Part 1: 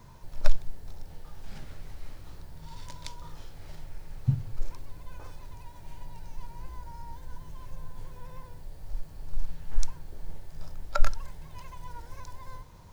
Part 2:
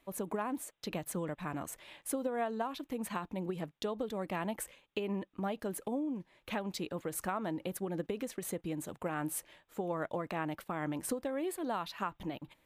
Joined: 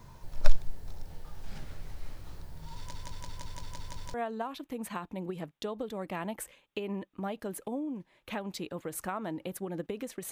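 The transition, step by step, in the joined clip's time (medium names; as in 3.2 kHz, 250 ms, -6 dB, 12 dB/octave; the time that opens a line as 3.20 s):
part 1
2.78 s: stutter in place 0.17 s, 8 plays
4.14 s: go over to part 2 from 2.34 s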